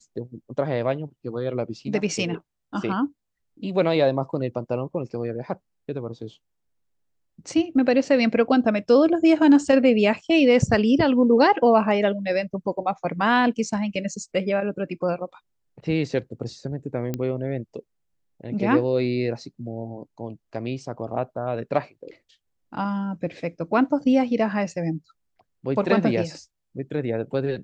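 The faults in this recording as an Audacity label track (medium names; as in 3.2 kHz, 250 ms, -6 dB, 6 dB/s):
17.140000	17.140000	pop -14 dBFS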